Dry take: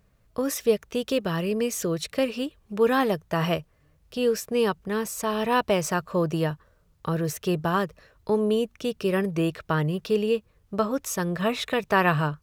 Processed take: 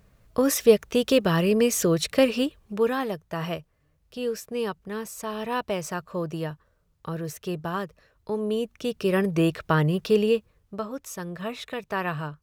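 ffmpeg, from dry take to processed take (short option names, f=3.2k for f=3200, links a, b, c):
-af "volume=13.5dB,afade=t=out:st=2.4:d=0.56:silence=0.298538,afade=t=in:st=8.34:d=1.1:silence=0.375837,afade=t=out:st=10.22:d=0.59:silence=0.298538"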